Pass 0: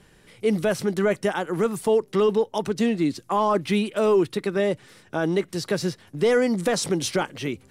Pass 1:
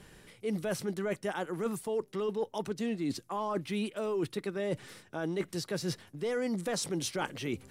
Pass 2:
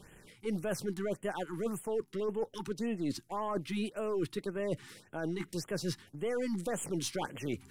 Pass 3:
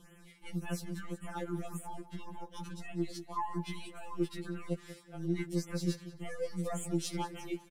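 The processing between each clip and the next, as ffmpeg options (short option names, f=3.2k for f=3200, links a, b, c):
-af "highshelf=f=11k:g=4.5,areverse,acompressor=threshold=-31dB:ratio=6,areverse"
-af "aeval=exprs='if(lt(val(0),0),0.708*val(0),val(0))':c=same,afftfilt=real='re*(1-between(b*sr/1024,520*pow(4900/520,0.5+0.5*sin(2*PI*1.8*pts/sr))/1.41,520*pow(4900/520,0.5+0.5*sin(2*PI*1.8*pts/sr))*1.41))':imag='im*(1-between(b*sr/1024,520*pow(4900/520,0.5+0.5*sin(2*PI*1.8*pts/sr))/1.41,520*pow(4900/520,0.5+0.5*sin(2*PI*1.8*pts/sr))*1.41))':win_size=1024:overlap=0.75"
-filter_complex "[0:a]asplit=2[a][b];[b]adelay=189,lowpass=f=5k:p=1,volume=-15dB,asplit=2[c][d];[d]adelay=189,lowpass=f=5k:p=1,volume=0.41,asplit=2[e][f];[f]adelay=189,lowpass=f=5k:p=1,volume=0.41,asplit=2[g][h];[h]adelay=189,lowpass=f=5k:p=1,volume=0.41[i];[a][c][e][g][i]amix=inputs=5:normalize=0,afftfilt=real='re*2.83*eq(mod(b,8),0)':imag='im*2.83*eq(mod(b,8),0)':win_size=2048:overlap=0.75"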